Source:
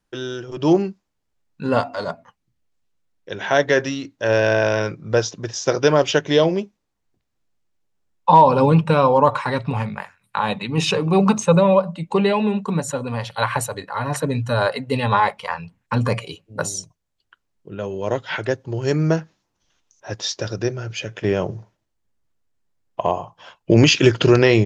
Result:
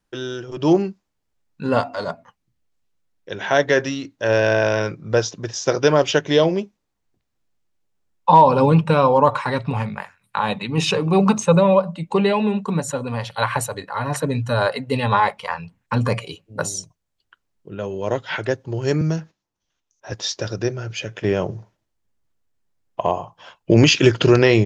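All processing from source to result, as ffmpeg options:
-filter_complex "[0:a]asettb=1/sr,asplit=3[a][b][c];[a]atrim=end=19.014[d];[b]atrim=start=19.01:end=20.12,asetpts=PTS-STARTPTS,afade=t=in:d=0.004:c=qsin,afade=t=out:st=1.106:d=0.004:c=qsin,agate=range=-10dB:threshold=-55dB:ratio=16:release=100:detection=peak,acrossover=split=230|3000[e][f][g];[f]acompressor=threshold=-34dB:ratio=2:attack=3.2:release=140:knee=2.83:detection=peak[h];[e][h][g]amix=inputs=3:normalize=0[i];[c]atrim=start=20.116[j];[d][i]acrossfade=d=0.004:c1=hsin:c2=qsin[k];[k][j]acrossfade=d=0.004:c1=qsin:c2=hsin"

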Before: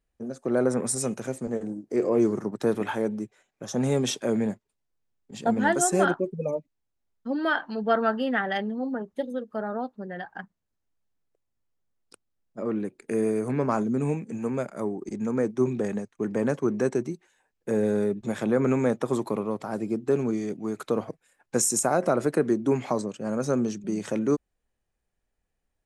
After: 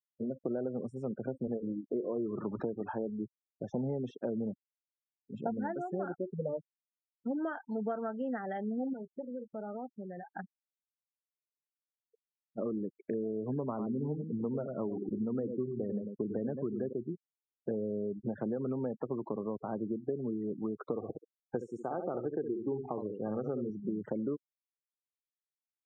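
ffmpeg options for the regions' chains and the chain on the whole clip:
-filter_complex "[0:a]asettb=1/sr,asplit=3[a][b][c];[a]atrim=end=2.164[d];[b]atrim=start=2.16:end=2.63,asetpts=PTS-STARTPTS,afade=t=in:d=0.004:c=qsin,afade=t=out:st=0.466:d=0.004:c=qsin,aeval=exprs='val(0)+0.5*0.02*sgn(val(0))':c=same,equalizer=f=1.3k:t=o:w=0.6:g=8[e];[c]atrim=start=2.626[f];[d][e]acrossfade=d=0.004:c1=hsin:c2=qsin[g];[g][f]acrossfade=d=0.004:c1=qsin:c2=hsin,asettb=1/sr,asplit=3[h][i][j];[h]atrim=end=8.934[k];[i]atrim=start=8.93:end=10.35,asetpts=PTS-STARTPTS,afade=t=in:d=0.004:c=qsin,afade=t=out:st=1.416:d=0.004:c=qsin,equalizer=f=4.9k:w=1:g=-4,acompressor=threshold=-41dB:ratio=2.5:attack=3.2:release=140:knee=1:detection=peak[l];[j]atrim=start=10.346[m];[k][l]acrossfade=d=0.004:c1=hsin:c2=qsin[n];[n][m]acrossfade=d=0.004:c1=qsin:c2=hsin,asettb=1/sr,asplit=3[o][p][q];[o]atrim=end=13.694[r];[p]atrim=start=13.69:end=16.93,asetpts=PTS-STARTPTS,afade=t=in:d=0.004:c=qsin,afade=t=out:st=3.236:d=0.004:c=qsin,lowshelf=f=430:g=2.5,aecho=1:1:96:0.398,atrim=end_sample=142884[s];[q]atrim=start=16.926[t];[r][s]acrossfade=d=0.004:c1=hsin:c2=qsin[u];[u][t]acrossfade=d=0.004:c1=qsin:c2=hsin,asettb=1/sr,asplit=3[v][w][x];[v]atrim=end=20.954[y];[w]atrim=start=20.95:end=23.7,asetpts=PTS-STARTPTS,afade=t=in:d=0.004:c=qsin,afade=t=out:st=2.746:d=0.004:c=qsin,aecho=1:1:2.5:0.37,atrim=end_sample=121275,aecho=1:1:66|132|198:0.447|0.0983|0.0216,atrim=end_sample=121275[z];[x]atrim=start=23.696[aa];[y][z]acrossfade=d=0.004:c1=hsin:c2=qsin[ab];[ab][aa]acrossfade=d=0.004:c1=qsin:c2=hsin,acompressor=threshold=-31dB:ratio=12,afftfilt=real='re*gte(hypot(re,im),0.0158)':imag='im*gte(hypot(re,im),0.0158)':win_size=1024:overlap=0.75,lowpass=1.1k"

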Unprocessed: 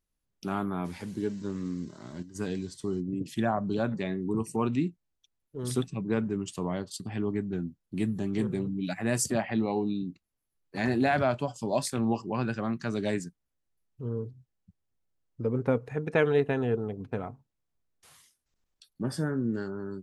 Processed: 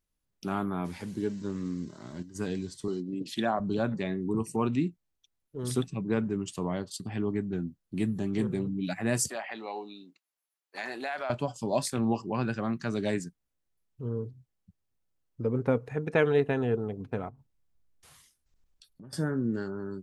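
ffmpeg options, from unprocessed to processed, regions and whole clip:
-filter_complex "[0:a]asettb=1/sr,asplit=3[a][b][c];[a]atrim=end=2.884[d];[b]atrim=start=2.88:end=3.6,asetpts=PTS-STARTPTS,afade=t=in:d=0.004:c=qsin,afade=t=out:st=0.716:d=0.004:c=qsin,highpass=210,equalizer=f=4k:t=o:w=0.73:g=10[e];[c]atrim=start=3.596[f];[d][e]acrossfade=d=0.004:c1=hsin:c2=qsin[g];[g][f]acrossfade=d=0.004:c1=qsin:c2=hsin,asettb=1/sr,asplit=3[h][i][j];[h]atrim=end=9.294[k];[i]atrim=start=9.29:end=11.3,asetpts=PTS-STARTPTS,afade=t=in:d=0.004:c=qsin,afade=t=out:st=2.006:d=0.004:c=qsin,highpass=670,acompressor=threshold=-31dB:ratio=3:attack=3.2:release=140:knee=1:detection=peak[l];[j]atrim=start=11.296[m];[k][l]acrossfade=d=0.004:c1=hsin:c2=qsin[n];[n][m]acrossfade=d=0.004:c1=qsin:c2=hsin,asettb=1/sr,asplit=3[o][p][q];[o]atrim=end=17.294[r];[p]atrim=start=17.29:end=19.13,asetpts=PTS-STARTPTS,afade=t=in:d=0.004:c=qsin,afade=t=out:st=1.836:d=0.004:c=qsin,lowshelf=f=110:g=11,acompressor=threshold=-48dB:ratio=5:attack=3.2:release=140:knee=1:detection=peak[s];[q]atrim=start=19.126[t];[r][s]acrossfade=d=0.004:c1=hsin:c2=qsin[u];[u][t]acrossfade=d=0.004:c1=qsin:c2=hsin"

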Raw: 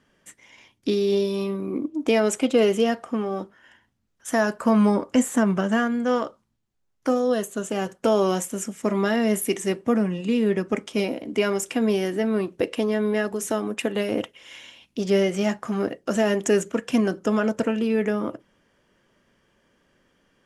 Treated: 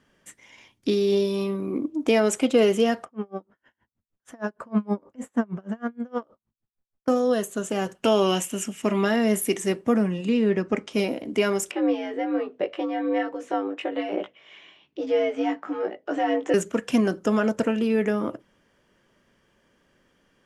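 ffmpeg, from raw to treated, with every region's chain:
-filter_complex "[0:a]asettb=1/sr,asplit=3[a][b][c];[a]atrim=end=3.054[d];[b]atrim=start=3.05:end=7.08,asetpts=PTS-STARTPTS,afade=t=in:d=0.004:c=qsin,afade=t=out:st=4.026:d=0.004:c=qsin,lowpass=f=1.3k:p=1,aeval=exprs='val(0)*pow(10,-33*(0.5-0.5*cos(2*PI*6.4*n/s))/20)':c=same[e];[c]atrim=start=7.076[f];[d][e]acrossfade=d=0.004:c1=hsin:c2=qsin[g];[g][f]acrossfade=d=0.004:c1=qsin:c2=hsin,asettb=1/sr,asplit=3[h][i][j];[h]atrim=end=7.954[k];[i]atrim=start=7.95:end=9.05,asetpts=PTS-STARTPTS,afade=t=in:d=0.004:c=qsin,afade=t=out:st=1.096:d=0.004:c=qsin,equalizer=f=2.8k:w=3.7:g=12.5,bandreject=f=510:w=8.7[l];[j]atrim=start=9.046[m];[k][l]acrossfade=d=0.004:c1=hsin:c2=qsin[n];[n][m]acrossfade=d=0.004:c1=qsin:c2=hsin,asettb=1/sr,asplit=3[o][p][q];[o]atrim=end=10.294[r];[p]atrim=start=10.29:end=10.92,asetpts=PTS-STARTPTS,afade=t=in:d=0.004:c=qsin,afade=t=out:st=0.626:d=0.004:c=qsin,lowpass=5.9k,bandreject=f=3.4k:w=14[s];[q]atrim=start=10.916[t];[r][s]acrossfade=d=0.004:c1=hsin:c2=qsin[u];[u][t]acrossfade=d=0.004:c1=qsin:c2=hsin,asettb=1/sr,asplit=3[v][w][x];[v]atrim=end=11.714[y];[w]atrim=start=11.71:end=16.54,asetpts=PTS-STARTPTS,afade=t=in:d=0.004:c=qsin,afade=t=out:st=4.826:d=0.004:c=qsin,lowpass=2.8k,flanger=delay=17.5:depth=2.6:speed=1.2,afreqshift=80[z];[x]atrim=start=16.536[aa];[y][z]acrossfade=d=0.004:c1=hsin:c2=qsin[ab];[ab][aa]acrossfade=d=0.004:c1=qsin:c2=hsin"

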